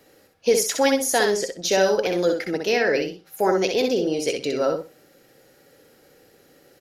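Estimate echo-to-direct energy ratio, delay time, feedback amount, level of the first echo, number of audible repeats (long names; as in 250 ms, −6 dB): −5.0 dB, 63 ms, 21%, −5.0 dB, 3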